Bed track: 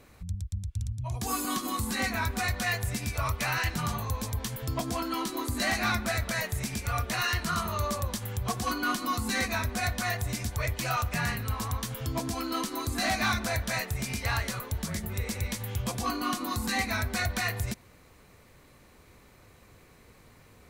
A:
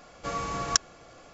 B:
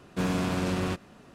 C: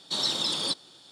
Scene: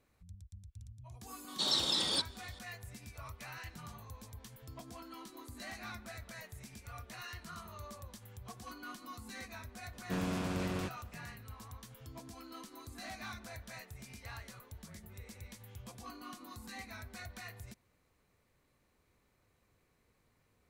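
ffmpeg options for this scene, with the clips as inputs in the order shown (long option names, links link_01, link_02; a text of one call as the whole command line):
ffmpeg -i bed.wav -i cue0.wav -i cue1.wav -i cue2.wav -filter_complex "[0:a]volume=-18dB[link_01];[3:a]atrim=end=1.11,asetpts=PTS-STARTPTS,volume=-4dB,afade=type=in:duration=0.004:curve=hsin,afade=type=out:start_time=1.106:duration=0.004:curve=hsin,adelay=1480[link_02];[2:a]atrim=end=1.34,asetpts=PTS-STARTPTS,volume=-8dB,afade=type=in:duration=0.004:curve=hsin,afade=type=out:start_time=1.336:duration=0.004:curve=hsin,adelay=9930[link_03];[link_01][link_02][link_03]amix=inputs=3:normalize=0" out.wav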